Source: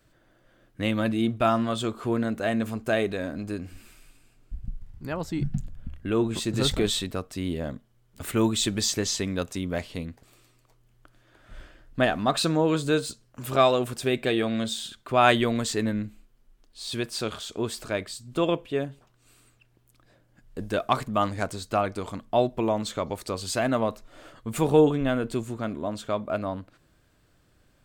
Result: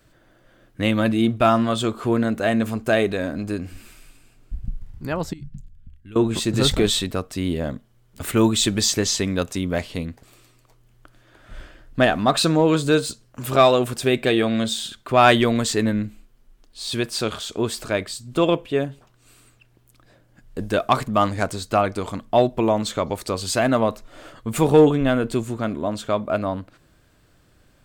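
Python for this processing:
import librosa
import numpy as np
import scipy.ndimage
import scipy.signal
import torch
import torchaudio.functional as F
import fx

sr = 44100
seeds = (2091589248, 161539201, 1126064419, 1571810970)

p1 = np.clip(10.0 ** (14.5 / 20.0) * x, -1.0, 1.0) / 10.0 ** (14.5 / 20.0)
p2 = x + (p1 * librosa.db_to_amplitude(-4.0))
p3 = fx.tone_stack(p2, sr, knobs='6-0-2', at=(5.33, 6.16))
y = p3 * librosa.db_to_amplitude(1.5)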